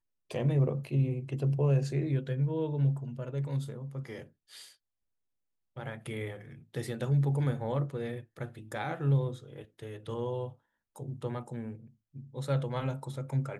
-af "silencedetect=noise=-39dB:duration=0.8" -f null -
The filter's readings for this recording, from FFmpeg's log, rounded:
silence_start: 4.62
silence_end: 5.77 | silence_duration: 1.15